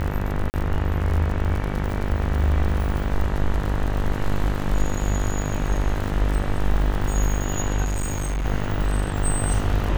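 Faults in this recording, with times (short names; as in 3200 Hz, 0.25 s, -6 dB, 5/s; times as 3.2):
buzz 50 Hz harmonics 40 -26 dBFS
crackle 73/s -27 dBFS
0.5–0.54 gap 39 ms
7.84–8.46 clipped -21.5 dBFS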